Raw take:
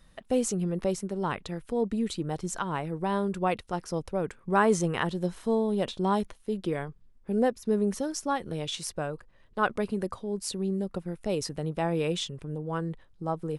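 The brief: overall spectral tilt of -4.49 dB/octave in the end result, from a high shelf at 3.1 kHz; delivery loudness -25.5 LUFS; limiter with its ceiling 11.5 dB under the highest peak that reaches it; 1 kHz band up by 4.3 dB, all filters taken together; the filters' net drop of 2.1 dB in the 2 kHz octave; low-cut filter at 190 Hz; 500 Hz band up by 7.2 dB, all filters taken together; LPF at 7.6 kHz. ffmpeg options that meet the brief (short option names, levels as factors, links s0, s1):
-af "highpass=190,lowpass=7600,equalizer=f=500:t=o:g=8,equalizer=f=1000:t=o:g=3.5,equalizer=f=2000:t=o:g=-8.5,highshelf=f=3100:g=9,volume=1.5,alimiter=limit=0.2:level=0:latency=1"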